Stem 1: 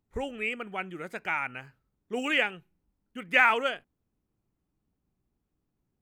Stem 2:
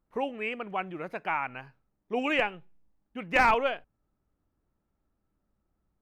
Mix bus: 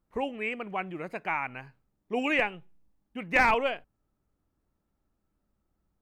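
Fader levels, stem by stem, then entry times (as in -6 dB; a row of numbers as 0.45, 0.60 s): -11.5, 0.0 dB; 0.00, 0.00 s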